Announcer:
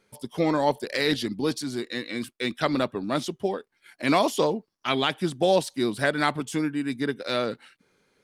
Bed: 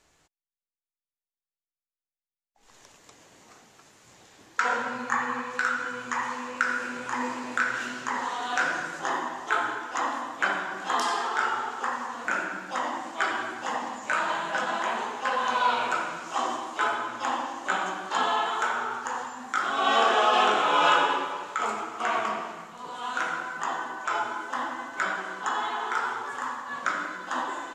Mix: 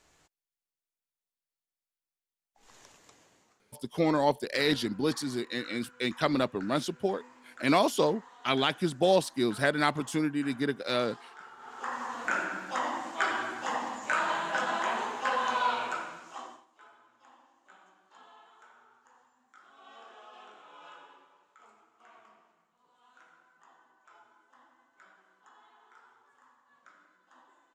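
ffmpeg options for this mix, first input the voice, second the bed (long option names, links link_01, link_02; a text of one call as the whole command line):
ffmpeg -i stem1.wav -i stem2.wav -filter_complex "[0:a]adelay=3600,volume=-2.5dB[link_01];[1:a]volume=20.5dB,afade=type=out:start_time=2.65:duration=0.96:silence=0.0749894,afade=type=in:start_time=11.58:duration=0.53:silence=0.0891251,afade=type=out:start_time=15.32:duration=1.34:silence=0.0375837[link_02];[link_01][link_02]amix=inputs=2:normalize=0" out.wav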